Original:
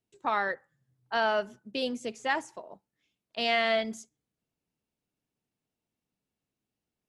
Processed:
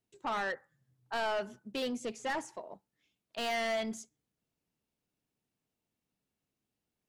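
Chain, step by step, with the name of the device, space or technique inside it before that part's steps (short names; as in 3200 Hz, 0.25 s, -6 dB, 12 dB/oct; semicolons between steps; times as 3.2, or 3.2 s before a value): saturation between pre-emphasis and de-emphasis (high shelf 3600 Hz +7 dB; soft clip -29 dBFS, distortion -7 dB; high shelf 3600 Hz -7 dB)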